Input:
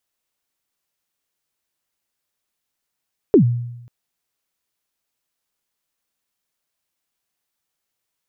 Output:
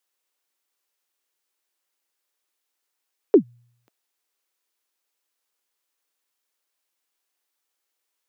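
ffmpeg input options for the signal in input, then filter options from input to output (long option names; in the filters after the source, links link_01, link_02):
-f lavfi -i "aevalsrc='0.531*pow(10,-3*t/0.9)*sin(2*PI*(460*0.098/log(120/460)*(exp(log(120/460)*min(t,0.098)/0.098)-1)+120*max(t-0.098,0)))':duration=0.54:sample_rate=44100"
-af "highpass=frequency=300:width=0.5412,highpass=frequency=300:width=1.3066,bandreject=frequency=660:width=12"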